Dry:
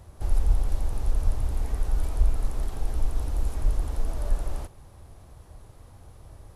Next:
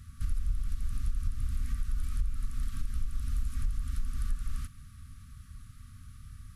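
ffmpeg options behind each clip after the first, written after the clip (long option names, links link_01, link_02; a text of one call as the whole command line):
ffmpeg -i in.wav -af "afftfilt=real='re*(1-between(b*sr/4096,270,1100))':imag='im*(1-between(b*sr/4096,270,1100))':win_size=4096:overlap=0.75,acompressor=threshold=-26dB:ratio=5" out.wav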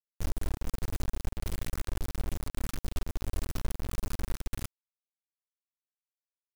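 ffmpeg -i in.wav -af "acrusher=bits=3:dc=4:mix=0:aa=0.000001" out.wav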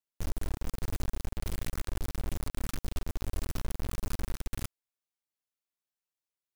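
ffmpeg -i in.wav -af "alimiter=level_in=1dB:limit=-24dB:level=0:latency=1:release=31,volume=-1dB,volume=1dB" out.wav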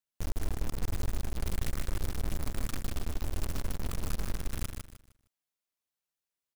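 ffmpeg -i in.wav -af "aecho=1:1:154|308|462|616:0.531|0.154|0.0446|0.0129" out.wav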